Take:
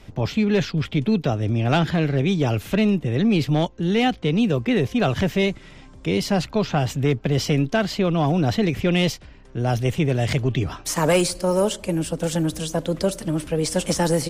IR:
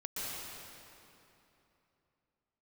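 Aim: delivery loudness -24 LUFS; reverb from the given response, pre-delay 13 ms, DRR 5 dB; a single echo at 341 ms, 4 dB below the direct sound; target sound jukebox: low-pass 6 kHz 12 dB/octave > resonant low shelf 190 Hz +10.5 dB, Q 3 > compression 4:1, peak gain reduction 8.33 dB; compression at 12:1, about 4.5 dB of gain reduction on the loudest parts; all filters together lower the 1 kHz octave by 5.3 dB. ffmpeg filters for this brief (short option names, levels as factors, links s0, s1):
-filter_complex "[0:a]equalizer=f=1000:t=o:g=-7,acompressor=threshold=0.1:ratio=12,aecho=1:1:341:0.631,asplit=2[s0][s1];[1:a]atrim=start_sample=2205,adelay=13[s2];[s1][s2]afir=irnorm=-1:irlink=0,volume=0.398[s3];[s0][s3]amix=inputs=2:normalize=0,lowpass=6000,lowshelf=f=190:t=q:w=3:g=10.5,acompressor=threshold=0.316:ratio=4,volume=0.376"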